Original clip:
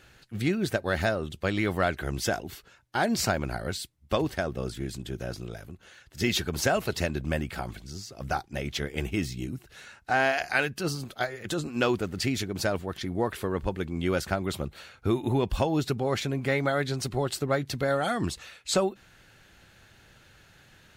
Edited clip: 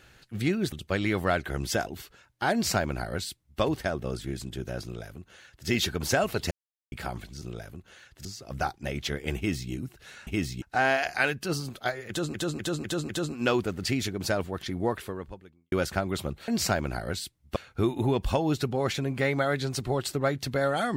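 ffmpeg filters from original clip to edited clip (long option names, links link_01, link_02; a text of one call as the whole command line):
ffmpeg -i in.wav -filter_complex "[0:a]asplit=15[link_01][link_02][link_03][link_04][link_05][link_06][link_07][link_08][link_09][link_10][link_11][link_12][link_13][link_14][link_15];[link_01]atrim=end=0.722[link_16];[link_02]atrim=start=1.248:end=7.04,asetpts=PTS-STARTPTS,afade=type=out:start_time=5.788:duration=0.004:curve=hsin[link_17];[link_03]atrim=start=7.04:end=7.45,asetpts=PTS-STARTPTS,volume=0[link_18];[link_04]atrim=start=7.45:end=7.952,asetpts=PTS-STARTPTS,afade=type=in:duration=0.004:curve=hsin[link_19];[link_05]atrim=start=5.368:end=6.202[link_20];[link_06]atrim=start=7.948:end=9.972[link_21];[link_07]atrim=start=9.068:end=9.422[link_22];[link_08]atrim=start=9.968:end=11.692[link_23];[link_09]atrim=start=11.438:end=11.692[link_24];[link_10]atrim=start=11.438:end=11.692[link_25];[link_11]atrim=start=11.438:end=11.692[link_26];[link_12]atrim=start=11.438:end=14.07,asetpts=PTS-STARTPTS,afade=type=out:start_time=1.802:duration=0.83:curve=qua[link_27];[link_13]atrim=start=14.07:end=14.832,asetpts=PTS-STARTPTS,afade=type=in:duration=0.004:curve=hsin[link_28];[link_14]atrim=start=3.058:end=4.142[link_29];[link_15]atrim=start=14.828[link_30];[link_17][link_18][link_19]concat=n=3:v=0:a=1[link_31];[link_16][link_31]acrossfade=duration=0.004:curve1=hsin:curve2=hsin[link_32];[link_32][link_20]acrossfade=duration=0.004:curve1=hsin:curve2=hsin[link_33];[link_33][link_21]acrossfade=duration=0.004:curve1=hsin:curve2=hsin[link_34];[link_34][link_22]acrossfade=duration=0.004:curve1=hsin:curve2=hsin[link_35];[link_35][link_23]acrossfade=duration=0.004:curve1=hsin:curve2=hsin[link_36];[link_36][link_24]acrossfade=duration=0.004:curve1=hsin:curve2=hsin[link_37];[link_37][link_25]acrossfade=duration=0.004:curve1=hsin:curve2=hsin[link_38];[link_38][link_26]acrossfade=duration=0.004:curve1=hsin:curve2=hsin[link_39];[link_27][link_28]concat=n=2:v=0:a=1[link_40];[link_39][link_40]acrossfade=duration=0.004:curve1=hsin:curve2=hsin[link_41];[link_41][link_29]acrossfade=duration=0.004:curve1=hsin:curve2=hsin[link_42];[link_42][link_30]acrossfade=duration=0.004:curve1=hsin:curve2=hsin" out.wav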